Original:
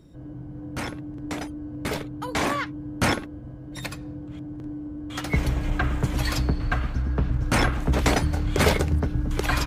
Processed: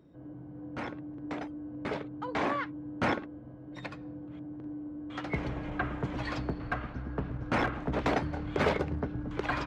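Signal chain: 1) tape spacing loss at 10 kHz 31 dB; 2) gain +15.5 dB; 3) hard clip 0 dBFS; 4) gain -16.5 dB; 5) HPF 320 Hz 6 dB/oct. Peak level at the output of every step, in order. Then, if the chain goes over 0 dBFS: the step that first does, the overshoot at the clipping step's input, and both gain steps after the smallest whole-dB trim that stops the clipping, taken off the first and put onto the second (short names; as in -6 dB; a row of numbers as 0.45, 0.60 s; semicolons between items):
-9.5, +6.0, 0.0, -16.5, -13.5 dBFS; step 2, 6.0 dB; step 2 +9.5 dB, step 4 -10.5 dB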